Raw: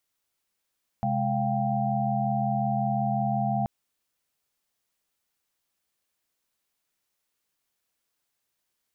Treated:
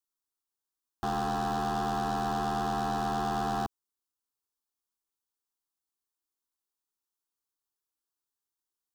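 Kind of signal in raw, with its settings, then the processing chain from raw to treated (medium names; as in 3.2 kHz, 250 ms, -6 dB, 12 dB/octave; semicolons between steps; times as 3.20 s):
chord C3/G#3/F5/G5 sine, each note -29 dBFS 2.63 s
waveshaping leveller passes 5; peak limiter -23.5 dBFS; static phaser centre 590 Hz, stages 6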